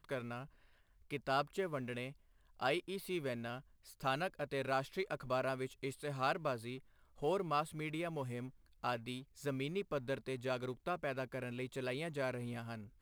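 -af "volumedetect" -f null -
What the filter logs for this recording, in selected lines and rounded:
mean_volume: -40.7 dB
max_volume: -21.2 dB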